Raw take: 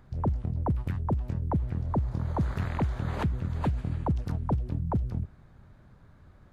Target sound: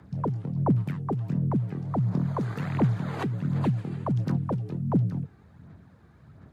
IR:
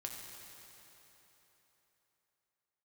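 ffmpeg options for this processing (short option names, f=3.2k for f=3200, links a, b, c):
-af "afreqshift=58,aphaser=in_gain=1:out_gain=1:delay=2.6:decay=0.43:speed=1.4:type=sinusoidal"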